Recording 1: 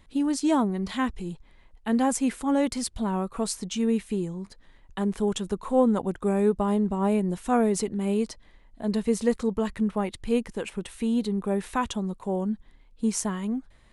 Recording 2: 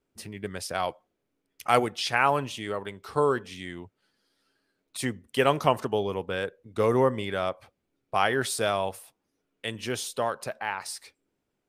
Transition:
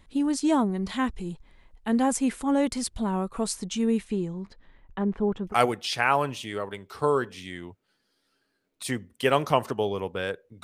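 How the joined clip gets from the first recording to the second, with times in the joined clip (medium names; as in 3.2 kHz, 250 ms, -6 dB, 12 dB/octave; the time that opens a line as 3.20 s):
recording 1
4.04–5.55 s: low-pass 7.5 kHz -> 1.1 kHz
5.51 s: go over to recording 2 from 1.65 s, crossfade 0.08 s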